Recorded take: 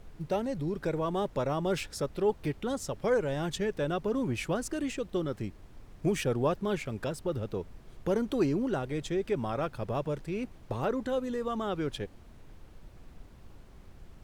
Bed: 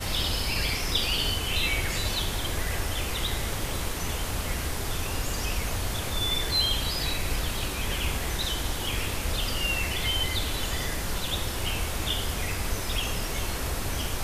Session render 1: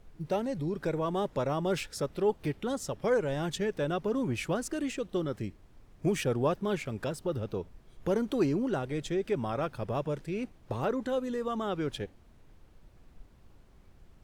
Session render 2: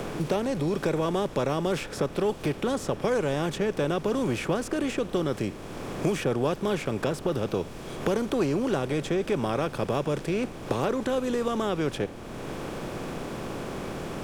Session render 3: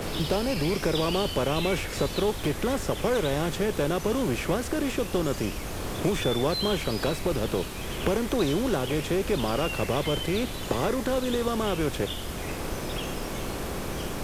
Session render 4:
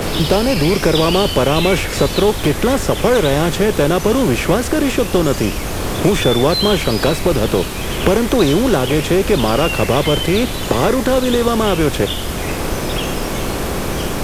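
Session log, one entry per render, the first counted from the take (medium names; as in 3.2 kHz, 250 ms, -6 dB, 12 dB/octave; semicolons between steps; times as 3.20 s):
noise print and reduce 6 dB
spectral levelling over time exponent 0.6; three bands compressed up and down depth 70%
add bed -6.5 dB
trim +12 dB; peak limiter -1 dBFS, peak gain reduction 1 dB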